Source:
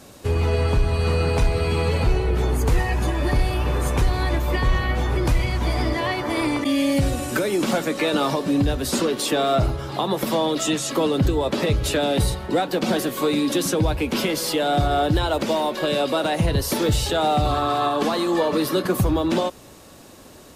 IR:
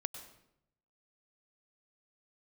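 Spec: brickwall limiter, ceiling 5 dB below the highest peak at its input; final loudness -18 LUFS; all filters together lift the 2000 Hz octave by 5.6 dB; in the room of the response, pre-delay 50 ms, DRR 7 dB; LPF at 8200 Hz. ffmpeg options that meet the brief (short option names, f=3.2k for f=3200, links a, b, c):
-filter_complex "[0:a]lowpass=8.2k,equalizer=f=2k:t=o:g=7,alimiter=limit=-12.5dB:level=0:latency=1,asplit=2[a][b];[1:a]atrim=start_sample=2205,adelay=50[c];[b][c]afir=irnorm=-1:irlink=0,volume=-6.5dB[d];[a][d]amix=inputs=2:normalize=0,volume=3.5dB"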